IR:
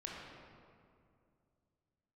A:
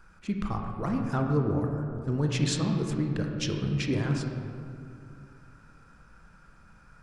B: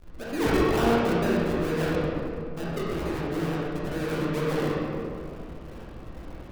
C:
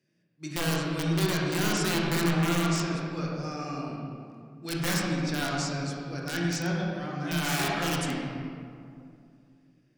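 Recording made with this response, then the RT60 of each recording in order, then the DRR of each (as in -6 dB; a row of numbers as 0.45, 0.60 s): C; 2.4, 2.4, 2.4 s; 2.0, -7.5, -3.5 dB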